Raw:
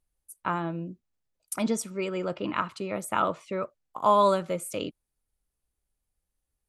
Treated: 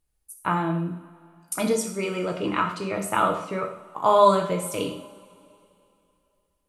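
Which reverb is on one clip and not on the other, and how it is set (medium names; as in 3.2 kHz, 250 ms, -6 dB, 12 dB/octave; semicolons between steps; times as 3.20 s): two-slope reverb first 0.58 s, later 2.8 s, from -20 dB, DRR 1.5 dB; trim +2.5 dB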